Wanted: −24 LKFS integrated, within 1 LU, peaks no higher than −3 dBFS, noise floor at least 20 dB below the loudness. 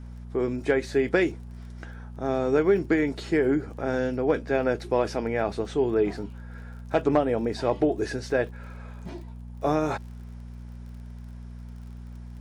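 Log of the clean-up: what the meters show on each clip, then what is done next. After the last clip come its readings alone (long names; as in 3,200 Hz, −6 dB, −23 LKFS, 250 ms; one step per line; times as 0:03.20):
crackle rate 35 per second; mains hum 60 Hz; hum harmonics up to 240 Hz; level of the hum −37 dBFS; integrated loudness −26.0 LKFS; sample peak −10.5 dBFS; target loudness −24.0 LKFS
→ click removal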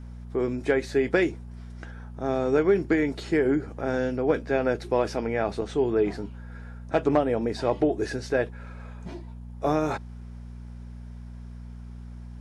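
crackle rate 0 per second; mains hum 60 Hz; hum harmonics up to 240 Hz; level of the hum −38 dBFS
→ hum removal 60 Hz, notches 4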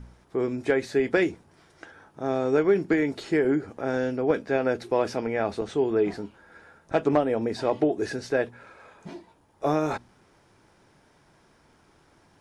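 mains hum none found; integrated loudness −26.0 LKFS; sample peak −10.0 dBFS; target loudness −24.0 LKFS
→ level +2 dB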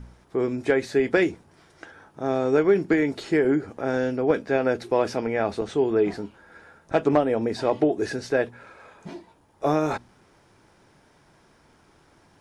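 integrated loudness −24.0 LKFS; sample peak −8.0 dBFS; background noise floor −59 dBFS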